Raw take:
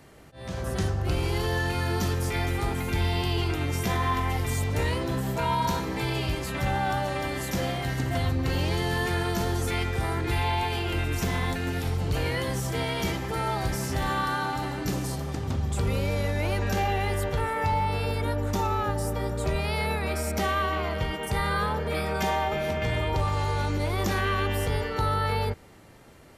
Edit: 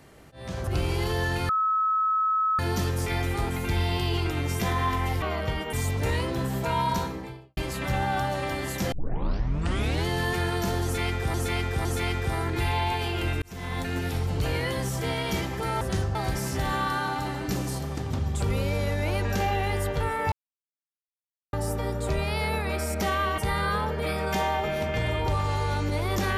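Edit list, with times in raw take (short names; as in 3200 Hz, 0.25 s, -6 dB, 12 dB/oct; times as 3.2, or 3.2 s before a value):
0.67–1.01 move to 13.52
1.83 add tone 1290 Hz -21 dBFS 1.10 s
5.61–6.3 studio fade out
7.65 tape start 1.14 s
9.56–10.07 loop, 3 plays
11.13–11.61 fade in
17.69–18.9 mute
20.75–21.26 move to 4.46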